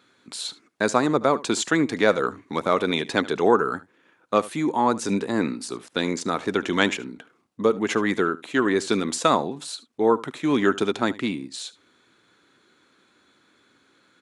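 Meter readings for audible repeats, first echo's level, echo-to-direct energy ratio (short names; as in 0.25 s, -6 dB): 1, -19.5 dB, -19.5 dB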